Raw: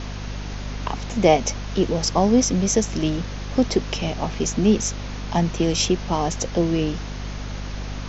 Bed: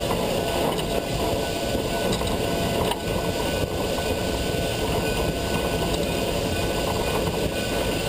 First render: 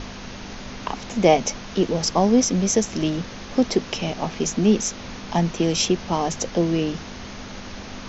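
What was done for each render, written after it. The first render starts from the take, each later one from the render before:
mains-hum notches 50/100/150 Hz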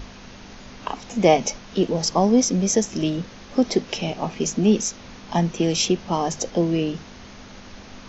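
noise reduction from a noise print 6 dB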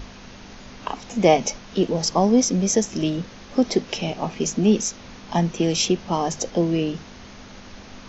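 no processing that can be heard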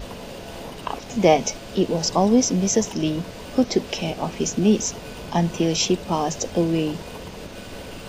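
mix in bed −13.5 dB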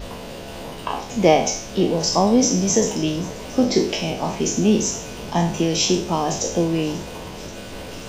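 peak hold with a decay on every bin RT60 0.52 s
feedback echo with a high-pass in the loop 535 ms, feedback 79%, level −20.5 dB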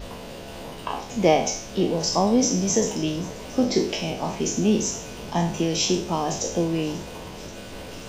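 level −3.5 dB

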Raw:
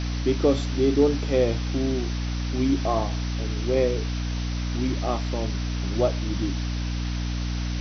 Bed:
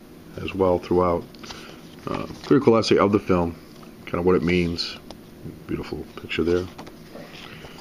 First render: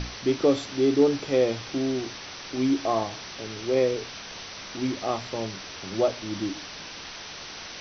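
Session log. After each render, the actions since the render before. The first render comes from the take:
mains-hum notches 60/120/180/240/300 Hz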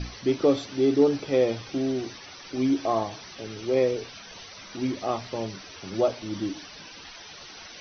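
broadband denoise 12 dB, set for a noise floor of −40 dBFS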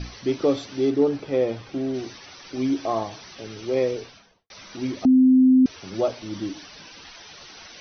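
0:00.90–0:01.94: high-shelf EQ 3,700 Hz −10.5 dB
0:03.94–0:04.50: fade out and dull
0:05.05–0:05.66: beep over 258 Hz −11.5 dBFS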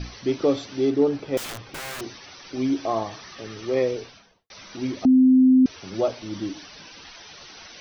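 0:01.37–0:02.01: wrap-around overflow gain 29 dB
0:03.06–0:03.82: hollow resonant body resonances 1,200/1,800 Hz, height 9 dB, ringing for 25 ms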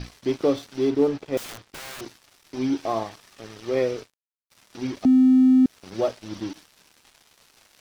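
dead-zone distortion −40.5 dBFS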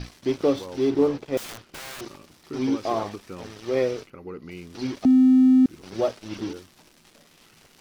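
mix in bed −19 dB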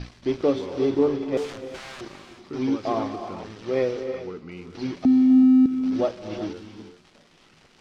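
high-frequency loss of the air 86 metres
reverb whose tail is shaped and stops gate 410 ms rising, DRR 8 dB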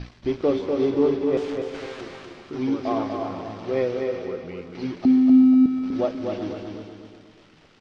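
high-frequency loss of the air 78 metres
repeating echo 245 ms, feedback 40%, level −5 dB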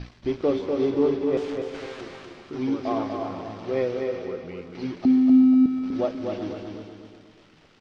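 level −1.5 dB

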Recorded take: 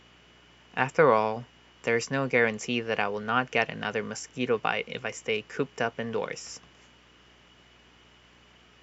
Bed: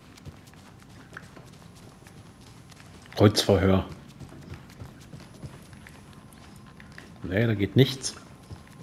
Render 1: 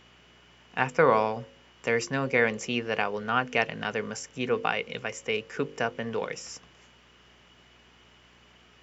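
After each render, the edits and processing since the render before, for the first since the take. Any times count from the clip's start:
hum removal 50 Hz, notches 11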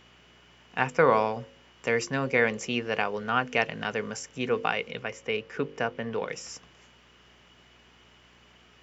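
0:04.91–0:06.28: high-frequency loss of the air 99 metres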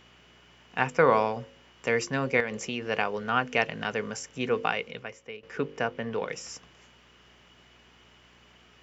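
0:02.40–0:02.89: downward compressor 4 to 1, threshold −27 dBFS
0:04.67–0:05.43: fade out, to −17 dB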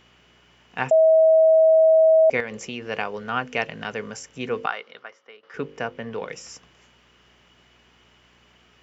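0:00.91–0:02.30: beep over 641 Hz −11.5 dBFS
0:04.66–0:05.54: loudspeaker in its box 460–5,100 Hz, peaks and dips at 480 Hz −5 dB, 1,300 Hz +7 dB, 2,500 Hz −9 dB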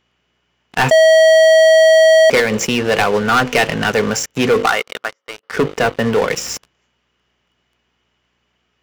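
leveller curve on the samples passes 5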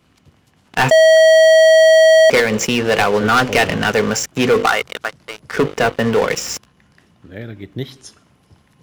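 mix in bed −7 dB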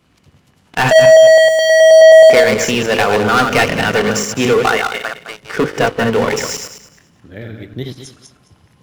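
feedback delay that plays each chunk backwards 106 ms, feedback 42%, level −4 dB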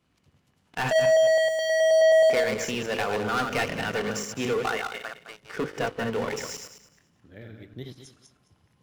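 level −14 dB

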